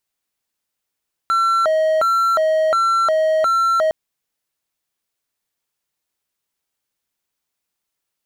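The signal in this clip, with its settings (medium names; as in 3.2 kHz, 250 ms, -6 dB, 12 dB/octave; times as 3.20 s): siren hi-lo 631–1350 Hz 1.4 per s triangle -11.5 dBFS 2.61 s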